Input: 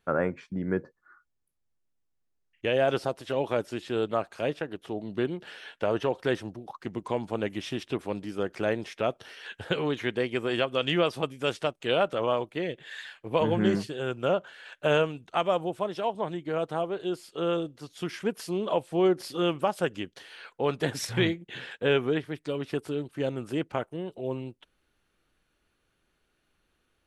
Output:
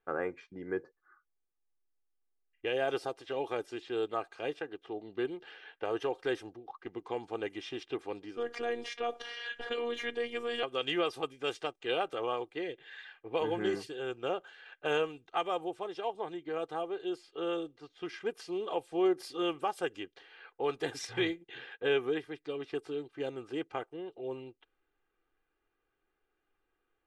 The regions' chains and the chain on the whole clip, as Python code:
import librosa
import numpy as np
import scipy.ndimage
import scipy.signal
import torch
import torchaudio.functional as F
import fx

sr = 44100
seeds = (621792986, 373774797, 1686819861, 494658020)

y = fx.chain(x, sr, fx.robotise(hz=237.0),
    fx.high_shelf(hz=8700.0, db=-3.5),
    fx.env_flatten(amount_pct=50), at=(8.37, 10.63))
y = fx.env_lowpass(y, sr, base_hz=2000.0, full_db=-23.5)
y = fx.peak_eq(y, sr, hz=67.0, db=-12.0, octaves=2.5)
y = y + 0.6 * np.pad(y, (int(2.5 * sr / 1000.0), 0))[:len(y)]
y = y * librosa.db_to_amplitude(-6.5)